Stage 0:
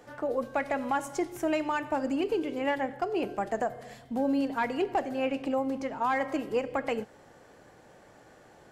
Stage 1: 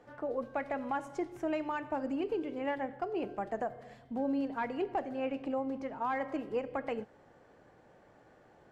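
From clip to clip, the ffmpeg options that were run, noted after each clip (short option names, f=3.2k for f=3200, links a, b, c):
-af "aemphasis=mode=reproduction:type=75kf,volume=-5dB"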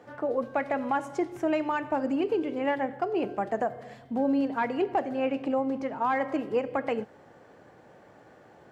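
-af "highpass=82,volume=7dB"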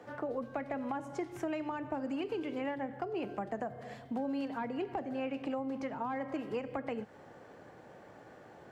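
-filter_complex "[0:a]acrossover=split=240|800[a][b][c];[a]acompressor=threshold=-42dB:ratio=4[d];[b]acompressor=threshold=-41dB:ratio=4[e];[c]acompressor=threshold=-44dB:ratio=4[f];[d][e][f]amix=inputs=3:normalize=0"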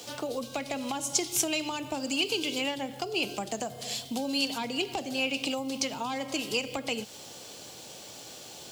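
-af "aexciter=amount=15.1:drive=6.8:freq=2.8k,volume=3dB"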